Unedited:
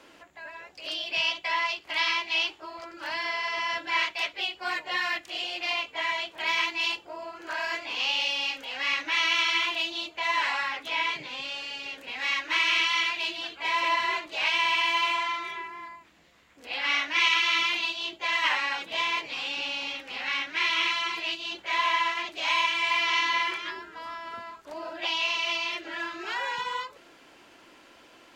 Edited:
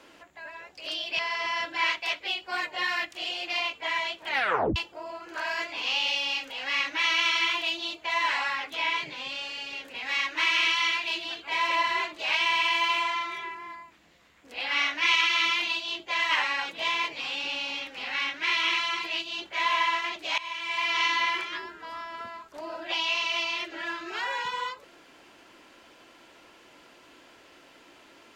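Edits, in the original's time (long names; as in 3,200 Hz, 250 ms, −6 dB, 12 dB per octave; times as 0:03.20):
0:01.19–0:03.32: remove
0:06.42: tape stop 0.47 s
0:22.51–0:23.13: fade in, from −18.5 dB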